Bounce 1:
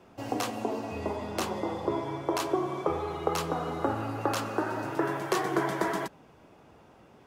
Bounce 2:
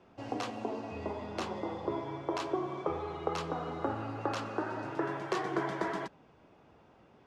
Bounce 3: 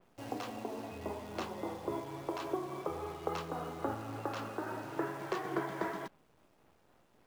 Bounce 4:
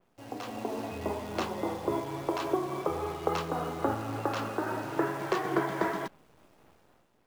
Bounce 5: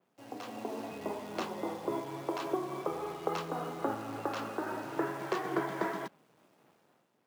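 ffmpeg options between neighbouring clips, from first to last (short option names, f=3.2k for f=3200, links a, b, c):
-af "lowpass=5.2k,volume=-5dB"
-af "tremolo=f=3.6:d=0.3,acrusher=bits=9:dc=4:mix=0:aa=0.000001,adynamicequalizer=threshold=0.00224:dfrequency=3600:dqfactor=0.7:tfrequency=3600:tqfactor=0.7:attack=5:release=100:ratio=0.375:range=2:mode=cutabove:tftype=highshelf,volume=-2dB"
-af "dynaudnorm=f=140:g=7:m=10dB,volume=-3dB"
-af "highpass=f=130:w=0.5412,highpass=f=130:w=1.3066,volume=-4dB"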